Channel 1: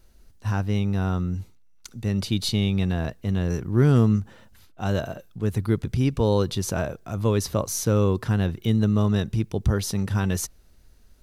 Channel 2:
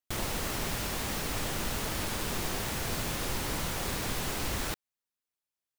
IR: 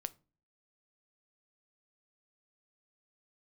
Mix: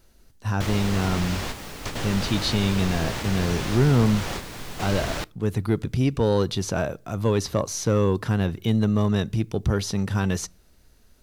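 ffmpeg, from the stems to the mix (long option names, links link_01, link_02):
-filter_complex "[0:a]lowshelf=frequency=83:gain=-7.5,volume=0dB,asplit=3[link_01][link_02][link_03];[link_02]volume=-7dB[link_04];[1:a]adelay=500,volume=1dB,asplit=2[link_05][link_06];[link_06]volume=-3dB[link_07];[link_03]apad=whole_len=277075[link_08];[link_05][link_08]sidechaingate=range=-33dB:threshold=-44dB:ratio=16:detection=peak[link_09];[2:a]atrim=start_sample=2205[link_10];[link_04][link_07]amix=inputs=2:normalize=0[link_11];[link_11][link_10]afir=irnorm=-1:irlink=0[link_12];[link_01][link_09][link_12]amix=inputs=3:normalize=0,acrossover=split=6800[link_13][link_14];[link_14]acompressor=threshold=-45dB:ratio=4:attack=1:release=60[link_15];[link_13][link_15]amix=inputs=2:normalize=0,asoftclip=type=tanh:threshold=-11dB"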